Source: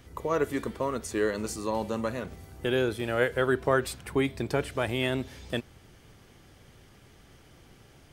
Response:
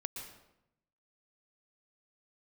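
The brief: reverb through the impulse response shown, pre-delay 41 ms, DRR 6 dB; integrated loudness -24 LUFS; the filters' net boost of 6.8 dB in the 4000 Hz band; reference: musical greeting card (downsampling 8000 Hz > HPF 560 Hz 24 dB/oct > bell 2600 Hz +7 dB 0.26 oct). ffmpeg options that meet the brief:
-filter_complex "[0:a]equalizer=f=4k:t=o:g=7.5,asplit=2[a][b];[1:a]atrim=start_sample=2205,adelay=41[c];[b][c]afir=irnorm=-1:irlink=0,volume=-5.5dB[d];[a][d]amix=inputs=2:normalize=0,aresample=8000,aresample=44100,highpass=f=560:w=0.5412,highpass=f=560:w=1.3066,equalizer=f=2.6k:t=o:w=0.26:g=7,volume=6.5dB"

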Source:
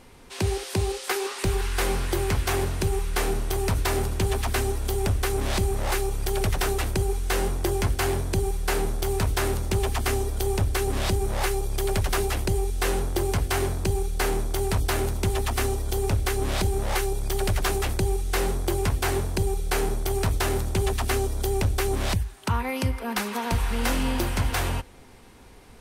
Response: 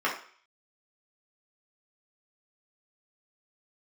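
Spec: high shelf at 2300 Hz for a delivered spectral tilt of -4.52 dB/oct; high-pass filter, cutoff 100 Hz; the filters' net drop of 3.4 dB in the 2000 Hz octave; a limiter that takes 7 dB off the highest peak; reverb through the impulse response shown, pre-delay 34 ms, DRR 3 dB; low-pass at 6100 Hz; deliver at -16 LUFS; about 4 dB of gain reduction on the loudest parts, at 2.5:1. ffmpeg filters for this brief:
-filter_complex "[0:a]highpass=100,lowpass=6.1k,equalizer=f=2k:t=o:g=-6.5,highshelf=f=2.3k:g=4,acompressor=threshold=-28dB:ratio=2.5,alimiter=limit=-22.5dB:level=0:latency=1,asplit=2[a][b];[1:a]atrim=start_sample=2205,adelay=34[c];[b][c]afir=irnorm=-1:irlink=0,volume=-15.5dB[d];[a][d]amix=inputs=2:normalize=0,volume=16.5dB"

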